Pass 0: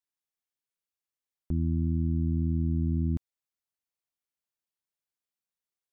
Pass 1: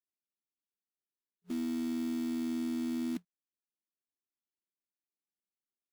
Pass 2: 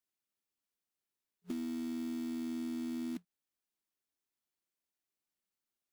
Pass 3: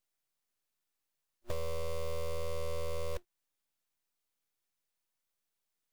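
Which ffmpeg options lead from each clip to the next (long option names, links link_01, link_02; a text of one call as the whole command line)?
ffmpeg -i in.wav -af "afftfilt=real='re*between(b*sr/4096,180,410)':imag='im*between(b*sr/4096,180,410)':win_size=4096:overlap=0.75,acrusher=bits=3:mode=log:mix=0:aa=0.000001" out.wav
ffmpeg -i in.wav -af "acompressor=threshold=-40dB:ratio=6,volume=3.5dB" out.wav
ffmpeg -i in.wav -af "aeval=exprs='abs(val(0))':channel_layout=same,volume=5.5dB" out.wav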